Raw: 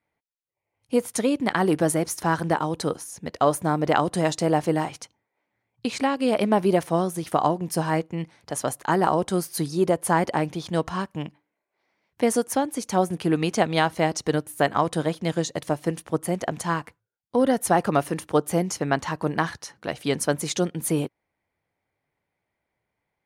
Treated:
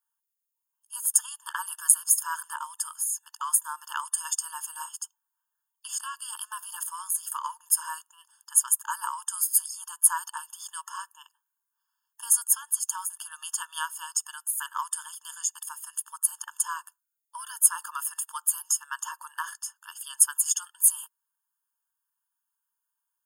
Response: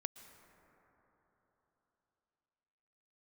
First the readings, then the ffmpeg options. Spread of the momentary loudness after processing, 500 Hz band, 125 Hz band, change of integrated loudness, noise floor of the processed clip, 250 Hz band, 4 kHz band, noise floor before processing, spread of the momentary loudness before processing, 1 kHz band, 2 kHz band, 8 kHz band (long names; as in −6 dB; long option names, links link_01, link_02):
17 LU, below −40 dB, below −40 dB, −1.5 dB, −84 dBFS, below −40 dB, −6.5 dB, −82 dBFS, 8 LU, −10.5 dB, −8.0 dB, +10.0 dB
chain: -af "aexciter=amount=10.2:drive=2.7:freq=6000,afftfilt=real='re*eq(mod(floor(b*sr/1024/900),2),1)':imag='im*eq(mod(floor(b*sr/1024/900),2),1)':win_size=1024:overlap=0.75,volume=-6dB"